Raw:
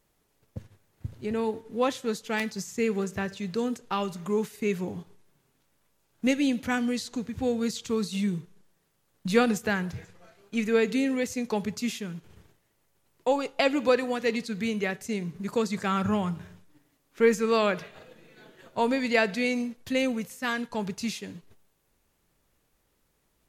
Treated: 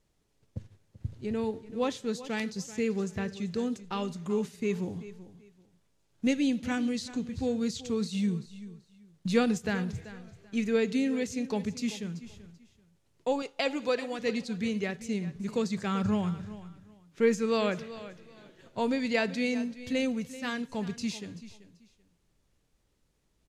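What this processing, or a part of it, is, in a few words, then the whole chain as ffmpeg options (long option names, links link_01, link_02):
smiley-face EQ: -filter_complex "[0:a]lowpass=6400,asettb=1/sr,asplit=3[link_01][link_02][link_03];[link_01]atrim=end=13.424[link_04];[link_02]atrim=start=13.42:end=14.19,asetpts=PTS-STARTPTS,afade=type=in:duration=0.004:curve=qsin,afade=type=out:start_time=0.766:duration=0.004:curve=qsin,lowshelf=frequency=240:gain=-12[link_05];[link_03]atrim=start=14.186[link_06];[link_04][link_05]acrossfade=duration=0.004:curve1=hsin:curve2=qsin[link_07];[link_07][link_06]acrossfade=duration=0.004:curve1=qsin:curve2=hsin,lowshelf=frequency=180:gain=3.5,equalizer=frequency=1200:width_type=o:width=2.5:gain=-5,highshelf=frequency=8900:gain=7.5,aecho=1:1:385|770:0.168|0.0386,volume=-2dB"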